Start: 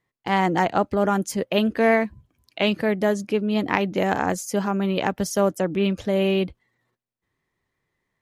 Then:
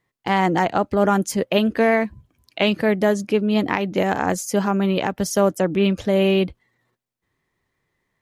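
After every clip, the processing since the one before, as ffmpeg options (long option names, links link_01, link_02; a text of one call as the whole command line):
ffmpeg -i in.wav -af "alimiter=limit=-10dB:level=0:latency=1:release=250,volume=3.5dB" out.wav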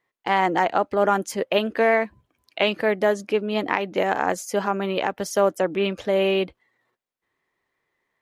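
ffmpeg -i in.wav -af "bass=frequency=250:gain=-14,treble=frequency=4000:gain=-6" out.wav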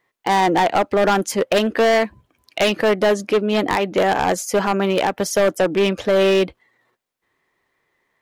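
ffmpeg -i in.wav -af "volume=19dB,asoftclip=hard,volume=-19dB,volume=7dB" out.wav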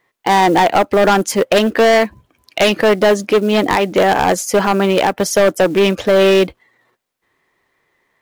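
ffmpeg -i in.wav -af "acrusher=bits=7:mode=log:mix=0:aa=0.000001,volume=5dB" out.wav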